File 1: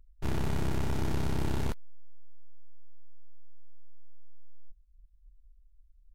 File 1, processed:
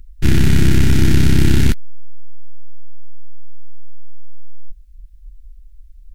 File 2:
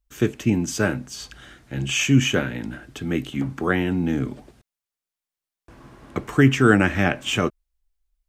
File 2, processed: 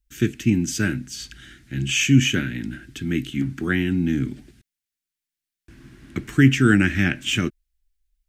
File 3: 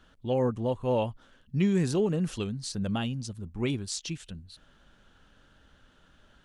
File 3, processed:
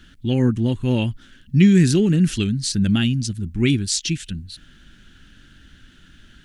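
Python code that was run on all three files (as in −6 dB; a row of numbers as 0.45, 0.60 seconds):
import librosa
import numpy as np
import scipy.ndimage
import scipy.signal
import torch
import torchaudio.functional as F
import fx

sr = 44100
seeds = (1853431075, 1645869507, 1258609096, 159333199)

y = fx.band_shelf(x, sr, hz=730.0, db=-16.0, octaves=1.7)
y = y * 10.0 ** (-3 / 20.0) / np.max(np.abs(y))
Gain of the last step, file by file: +19.0, +1.5, +12.5 decibels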